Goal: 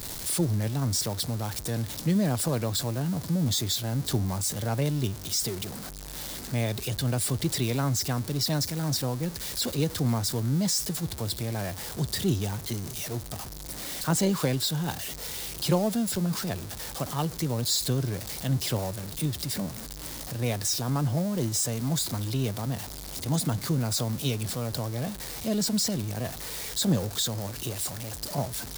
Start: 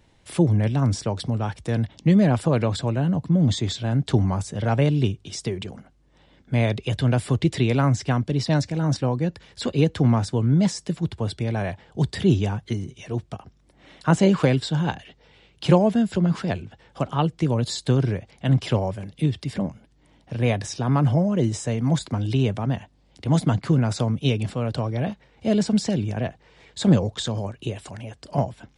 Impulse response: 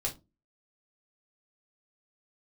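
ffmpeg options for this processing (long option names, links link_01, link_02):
-af "aeval=exprs='val(0)+0.5*0.0422*sgn(val(0))':channel_layout=same,aexciter=amount=3.8:drive=3.4:freq=3900,volume=-8.5dB"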